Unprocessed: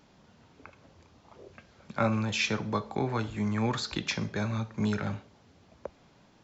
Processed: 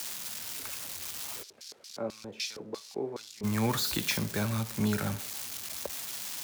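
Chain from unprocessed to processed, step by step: zero-crossing glitches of -26 dBFS; 1.42–3.43 s: LFO band-pass square 5 Hz -> 1.9 Hz 420–4900 Hz

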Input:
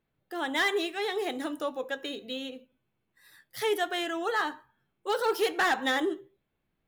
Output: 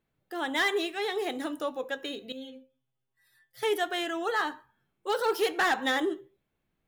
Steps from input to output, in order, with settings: 2.32–3.63 s: inharmonic resonator 130 Hz, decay 0.26 s, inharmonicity 0.002

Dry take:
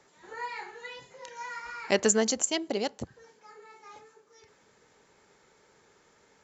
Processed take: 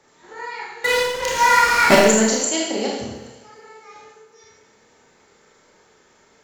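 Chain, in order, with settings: de-hum 137.8 Hz, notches 29; 0.84–1.95 s: waveshaping leveller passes 5; on a send: thinning echo 412 ms, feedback 32%, level -22 dB; on the sum: Schroeder reverb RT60 0.91 s, combs from 25 ms, DRR -3.5 dB; trim +2.5 dB

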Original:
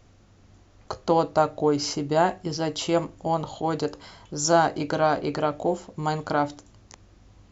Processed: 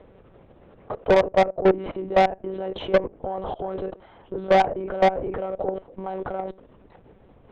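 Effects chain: monotone LPC vocoder at 8 kHz 190 Hz; level held to a coarse grid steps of 20 dB; peaking EQ 500 Hz +11 dB 1.5 oct; low-pass that closes with the level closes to 2.1 kHz, closed at -21.5 dBFS; low-pass 3 kHz 12 dB/octave; valve stage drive 18 dB, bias 0.35; dynamic bell 1.3 kHz, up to -4 dB, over -42 dBFS, Q 1.8; trim +7 dB

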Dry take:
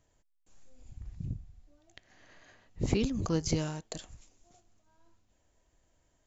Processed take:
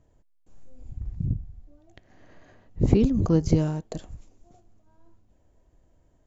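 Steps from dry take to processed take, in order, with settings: tilt shelf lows +8 dB, about 1.1 kHz; trim +2.5 dB

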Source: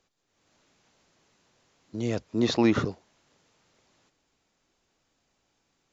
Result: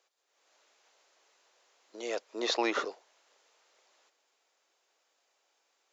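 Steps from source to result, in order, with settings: high-pass 450 Hz 24 dB/octave

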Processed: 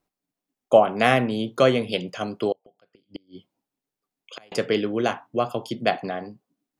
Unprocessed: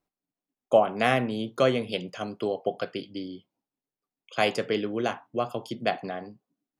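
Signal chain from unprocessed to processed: 2.52–4.52 s: inverted gate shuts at -27 dBFS, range -34 dB; trim +4.5 dB

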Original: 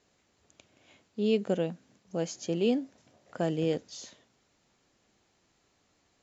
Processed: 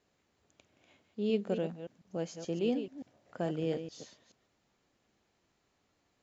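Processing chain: chunks repeated in reverse 144 ms, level -9.5 dB; treble shelf 5.9 kHz -8.5 dB; trim -4.5 dB

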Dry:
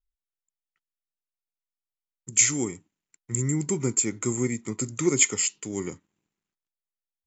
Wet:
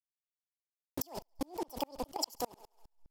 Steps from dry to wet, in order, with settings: send-on-delta sampling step -37 dBFS; steep low-pass 6.2 kHz 96 dB/octave; treble shelf 4 kHz +7.5 dB; low-pass that closes with the level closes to 2.7 kHz, closed at -20.5 dBFS; speed mistake 33 rpm record played at 78 rpm; in parallel at +1 dB: compression 12:1, threshold -36 dBFS, peak gain reduction 18 dB; on the sum: peaking EQ 2 kHz -6 dB 1.2 oct; on a send: thinning echo 68 ms, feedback 54%, high-pass 300 Hz, level -19 dB; on the sum: level held to a coarse grid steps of 20 dB; sawtooth tremolo in dB swelling 4.9 Hz, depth 37 dB; trim +10.5 dB

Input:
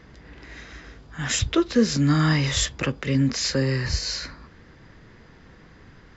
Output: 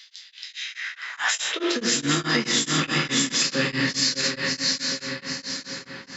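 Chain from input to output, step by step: spectral sustain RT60 0.32 s; tilt shelf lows -6.5 dB; on a send: shuffle delay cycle 782 ms, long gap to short 3:1, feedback 31%, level -4 dB; on the sum: high-pass sweep 3.7 kHz -> 190 Hz, 0.51–1.99 s; bass shelf 130 Hz -5 dB; spring tank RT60 3.4 s, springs 46 ms, chirp 40 ms, DRR 4.5 dB; in parallel at +0.5 dB: compression, threshold -32 dBFS, peak gain reduction 18 dB; on the sum: peak limiter -11 dBFS, peak gain reduction 8.5 dB; tremolo of two beating tones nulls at 4.7 Hz

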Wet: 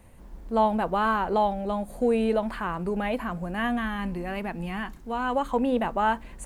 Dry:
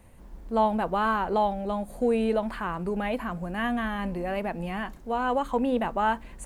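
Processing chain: 3.78–5.36 s: peaking EQ 580 Hz -7.5 dB 0.77 oct; trim +1 dB

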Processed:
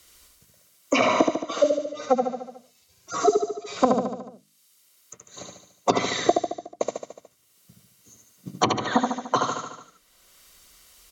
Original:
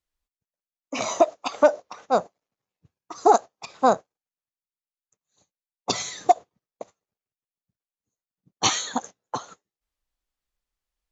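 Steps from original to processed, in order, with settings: 1.23–3.77 s: harmonic-percussive separation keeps harmonic; hum notches 50/100/150/200/250/300 Hz; low-pass that closes with the level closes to 300 Hz, closed at -18.5 dBFS; treble shelf 2.8 kHz +9.5 dB; comb of notches 840 Hz; feedback delay 73 ms, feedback 49%, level -3.5 dB; three bands compressed up and down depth 70%; trim +7.5 dB

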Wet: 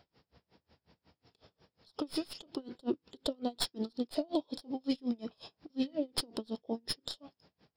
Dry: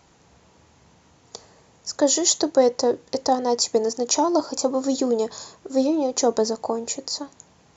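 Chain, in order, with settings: tracing distortion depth 0.066 ms; peak limiter -12 dBFS, peak gain reduction 5.5 dB; formant shift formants -5 st; logarithmic tremolo 5.5 Hz, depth 31 dB; trim -6.5 dB

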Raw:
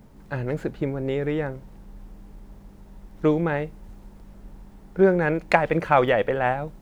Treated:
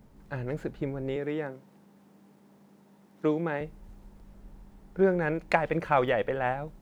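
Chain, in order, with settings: 1.16–3.61 s: high-pass 160 Hz 24 dB/octave; trim -6 dB

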